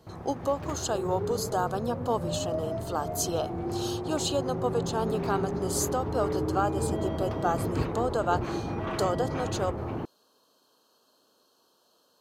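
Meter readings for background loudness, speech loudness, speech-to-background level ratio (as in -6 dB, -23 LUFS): -33.0 LUFS, -31.5 LUFS, 1.5 dB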